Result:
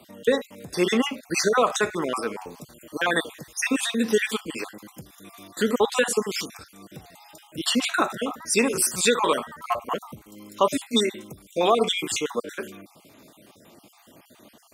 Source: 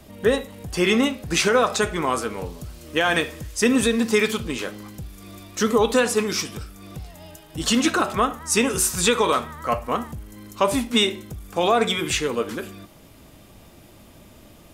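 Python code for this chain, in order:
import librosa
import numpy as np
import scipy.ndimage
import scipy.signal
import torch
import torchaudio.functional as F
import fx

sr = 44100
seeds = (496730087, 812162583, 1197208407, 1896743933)

y = fx.spec_dropout(x, sr, seeds[0], share_pct=42)
y = scipy.signal.sosfilt(scipy.signal.butter(2, 200.0, 'highpass', fs=sr, output='sos'), y)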